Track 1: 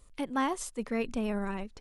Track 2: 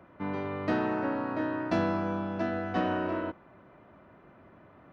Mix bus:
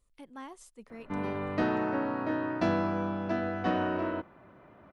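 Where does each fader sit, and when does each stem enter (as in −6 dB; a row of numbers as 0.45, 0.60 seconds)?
−15.0, 0.0 decibels; 0.00, 0.90 seconds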